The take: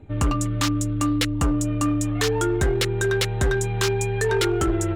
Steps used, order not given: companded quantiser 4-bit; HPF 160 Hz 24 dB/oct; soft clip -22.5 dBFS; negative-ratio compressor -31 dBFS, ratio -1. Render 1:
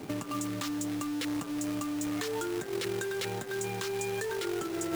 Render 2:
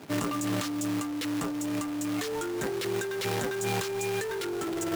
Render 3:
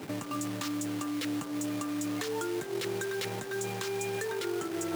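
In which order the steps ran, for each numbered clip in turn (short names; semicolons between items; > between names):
negative-ratio compressor > HPF > soft clip > companded quantiser; companded quantiser > HPF > soft clip > negative-ratio compressor; negative-ratio compressor > companded quantiser > soft clip > HPF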